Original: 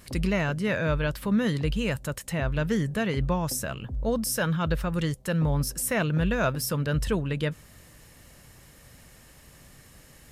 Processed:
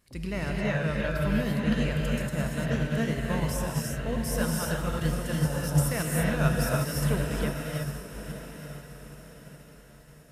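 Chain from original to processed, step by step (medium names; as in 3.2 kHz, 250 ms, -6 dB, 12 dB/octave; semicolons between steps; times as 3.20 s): echo that smears into a reverb 944 ms, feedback 56%, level -7 dB; gated-style reverb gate 370 ms rising, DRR -2 dB; upward expansion 1.5:1, over -42 dBFS; trim -3.5 dB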